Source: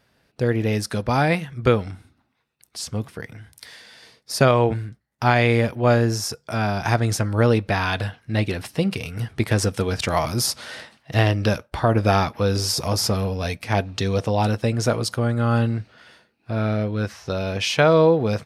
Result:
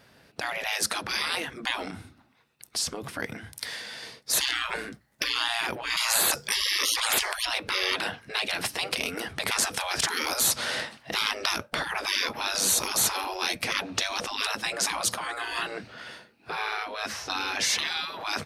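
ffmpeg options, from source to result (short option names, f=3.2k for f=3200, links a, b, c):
-filter_complex "[0:a]asettb=1/sr,asplit=3[a][b][c];[a]atrim=end=1.854[d];[b]atrim=start=1.85:end=3.05,asetpts=PTS-STARTPTS,afade=t=in:d=0.004:c=qsin,afade=t=out:st=1.196:d=0.004:c=qsin,acompressor=threshold=-30dB:ratio=6:attack=3.2:release=140:knee=1:detection=peak[e];[c]atrim=start=3.046[f];[d][e]acrossfade=d=0.004:c1=hsin:c2=qsin[g];[g][f]acrossfade=d=0.004:c1=qsin:c2=hsin,asettb=1/sr,asplit=3[h][i][j];[h]atrim=end=4.334[k];[i]atrim=start=4.33:end=5.24,asetpts=PTS-STARTPTS,afade=t=in:d=0.004:c=qsin,afade=t=out:st=0.906:d=0.004:c=qsin,acontrast=38[l];[j]atrim=start=5.236[m];[k][l]acrossfade=d=0.004:c1=hsin:c2=qsin[n];[n][m]acrossfade=d=0.004:c1=qsin:c2=hsin,asplit=3[o][p][q];[o]atrim=end=5.972[r];[p]atrim=start=5.968:end=7.452,asetpts=PTS-STARTPTS,volume=12dB[s];[q]atrim=start=7.448[t];[r][s]acrossfade=d=0.004:c1=hsin:c2=hsin[u];[u][t]acrossfade=d=0.004:c1=hsin:c2=hsin,afftfilt=real='re*lt(hypot(re,im),0.0891)':imag='im*lt(hypot(re,im),0.0891)':win_size=1024:overlap=0.75,lowshelf=f=64:g=-10,volume=7dB"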